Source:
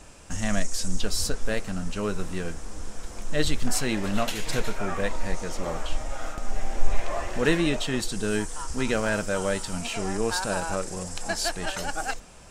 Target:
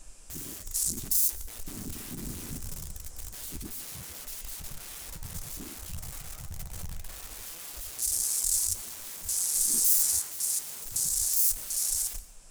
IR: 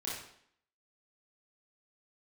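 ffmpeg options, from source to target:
-filter_complex "[0:a]asettb=1/sr,asplit=3[s0][s1][s2];[s0]atrim=end=1.684[s3];[s1]atrim=start=1.68:end=2.57,asetpts=PTS-STARTPTS,afade=t=in:d=0.004:c=qsin,afade=t=out:st=0.886:d=0.004:c=qsin,aeval=exprs='val(0)+0.5*0.0211*sgn(val(0))':c=same[s4];[s2]atrim=start=2.566[s5];[s3][s4]acrossfade=d=0.004:c1=hsin:c2=qsin[s6];[s6][s5]acrossfade=d=0.004:c1=qsin:c2=hsin,asettb=1/sr,asplit=3[s7][s8][s9];[s7]atrim=end=3.104[s10];[s8]atrim=start=3.1:end=3.79,asetpts=PTS-STARTPTS,afade=t=in:d=0.004:c=qsin,afade=t=out:st=0.686:d=0.004:c=qsin,lowshelf=f=100:g=-5[s11];[s9]atrim=start=3.786[s12];[s10][s11]acrossfade=d=0.004:c1=hsin:c2=qsin[s13];[s13][s12]acrossfade=d=0.004:c1=qsin:c2=hsin,acompressor=threshold=0.0501:ratio=6,aeval=exprs='(mod(37.6*val(0)+1,2)-1)/37.6':c=same,crystalizer=i=1.5:c=0,equalizer=f=10000:t=o:w=1.9:g=6,bandreject=f=60:t=h:w=6,bandreject=f=120:t=h:w=6,alimiter=limit=0.141:level=0:latency=1:release=429,asettb=1/sr,asplit=3[s14][s15][s16];[s14]atrim=end=9.544[s17];[s15]atrim=start=9.54:end=10.19,asetpts=PTS-STARTPTS,afade=t=in:d=0.004:c=qsin,afade=t=out:st=0.646:d=0.004:c=qsin,asplit=2[s18][s19];[s19]adelay=13,volume=0.794[s20];[s18][s20]amix=inputs=2:normalize=0,atrim=end_sample=28665[s21];[s16]atrim=start=10.186[s22];[s17][s21]acrossfade=d=0.004:c1=hsin:c2=qsin[s23];[s23][s22]acrossfade=d=0.004:c1=qsin:c2=hsin,afwtdn=0.0251,asplit=2[s24][s25];[1:a]atrim=start_sample=2205,adelay=119[s26];[s25][s26]afir=irnorm=-1:irlink=0,volume=0.106[s27];[s24][s27]amix=inputs=2:normalize=0,flanger=delay=5.1:depth=9.6:regen=-58:speed=1.8:shape=triangular,volume=2.66"

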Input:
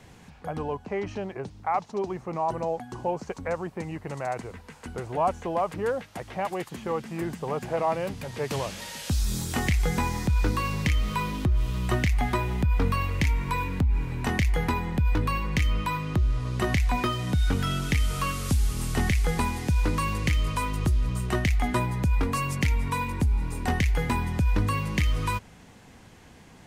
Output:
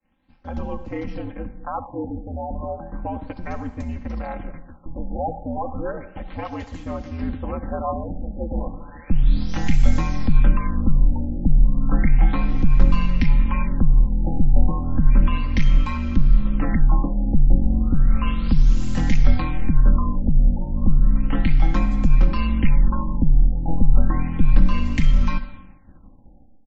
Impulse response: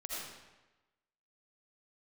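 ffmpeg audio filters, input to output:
-filter_complex "[0:a]aeval=exprs='val(0)*sin(2*PI*83*n/s)':c=same,bandreject=f=440:w=12,aecho=1:1:3.8:0.68,acrossover=split=170|2200[s0][s1][s2];[s0]dynaudnorm=f=160:g=5:m=4.47[s3];[s3][s1][s2]amix=inputs=3:normalize=0,agate=range=0.0224:threshold=0.0112:ratio=3:detection=peak,asplit=2[s4][s5];[1:a]atrim=start_sample=2205,asetrate=52920,aresample=44100[s6];[s5][s6]afir=irnorm=-1:irlink=0,volume=0.398[s7];[s4][s7]amix=inputs=2:normalize=0,afftfilt=real='re*lt(b*sr/1024,850*pow(7800/850,0.5+0.5*sin(2*PI*0.33*pts/sr)))':imag='im*lt(b*sr/1024,850*pow(7800/850,0.5+0.5*sin(2*PI*0.33*pts/sr)))':win_size=1024:overlap=0.75,volume=0.794"

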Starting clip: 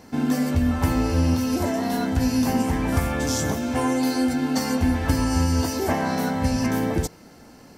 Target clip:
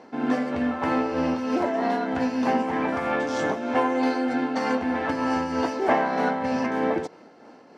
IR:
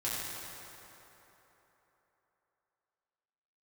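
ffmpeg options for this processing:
-filter_complex "[0:a]tremolo=f=3.2:d=0.38,asplit=2[s0][s1];[s1]adynamicsmooth=sensitivity=3.5:basefreq=1400,volume=0.944[s2];[s0][s2]amix=inputs=2:normalize=0,highpass=370,lowpass=3400"

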